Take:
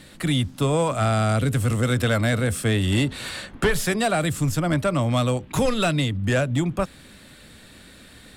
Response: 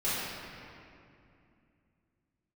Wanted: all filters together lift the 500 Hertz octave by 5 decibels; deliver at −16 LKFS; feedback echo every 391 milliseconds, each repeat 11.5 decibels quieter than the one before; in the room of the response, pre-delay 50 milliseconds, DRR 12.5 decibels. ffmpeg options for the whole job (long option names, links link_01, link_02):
-filter_complex "[0:a]equalizer=frequency=500:width_type=o:gain=6,aecho=1:1:391|782|1173:0.266|0.0718|0.0194,asplit=2[link_01][link_02];[1:a]atrim=start_sample=2205,adelay=50[link_03];[link_02][link_03]afir=irnorm=-1:irlink=0,volume=-22.5dB[link_04];[link_01][link_04]amix=inputs=2:normalize=0,volume=4.5dB"